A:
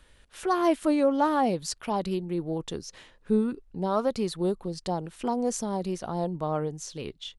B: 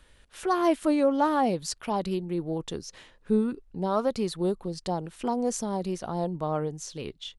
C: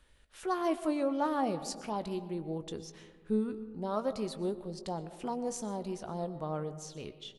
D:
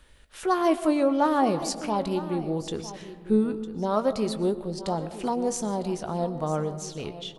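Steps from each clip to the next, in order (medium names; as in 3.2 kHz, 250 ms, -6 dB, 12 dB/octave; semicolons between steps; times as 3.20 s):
no audible change
doubling 19 ms -13 dB; on a send at -13 dB: reverberation RT60 1.6 s, pre-delay 80 ms; on the sum: trim -7.5 dB
delay 954 ms -15 dB; trim +8.5 dB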